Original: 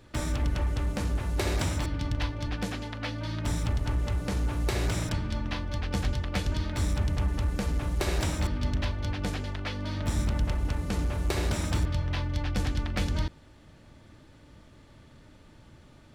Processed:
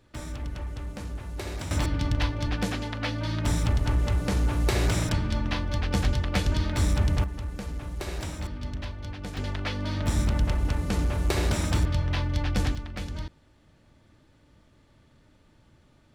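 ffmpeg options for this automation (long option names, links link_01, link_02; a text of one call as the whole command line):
ffmpeg -i in.wav -af "asetnsamples=nb_out_samples=441:pad=0,asendcmd='1.71 volume volume 4dB;7.24 volume volume -5.5dB;9.37 volume volume 3dB;12.75 volume volume -6dB',volume=-6.5dB" out.wav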